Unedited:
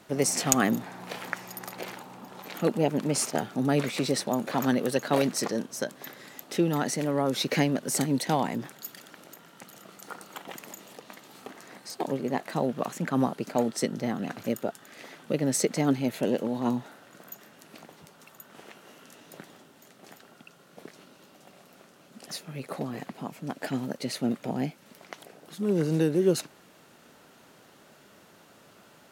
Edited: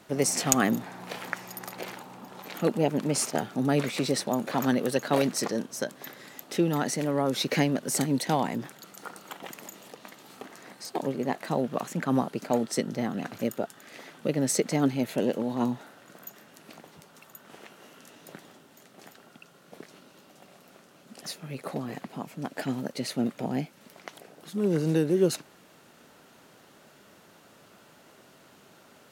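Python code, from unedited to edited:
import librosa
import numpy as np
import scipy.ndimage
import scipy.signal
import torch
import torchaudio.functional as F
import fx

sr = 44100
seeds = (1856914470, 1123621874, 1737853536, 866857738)

y = fx.edit(x, sr, fx.cut(start_s=8.84, length_s=1.05), tone=tone)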